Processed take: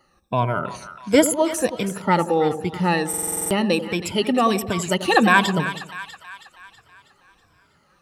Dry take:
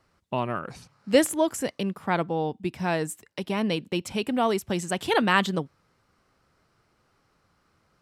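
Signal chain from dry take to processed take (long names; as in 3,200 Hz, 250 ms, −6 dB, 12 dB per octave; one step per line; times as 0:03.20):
rippled gain that drifts along the octave scale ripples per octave 1.7, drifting −1.4 Hz, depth 18 dB
echo with a time of its own for lows and highs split 970 Hz, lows 89 ms, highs 323 ms, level −11 dB
buffer that repeats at 0:03.09, samples 2,048, times 8
level +3 dB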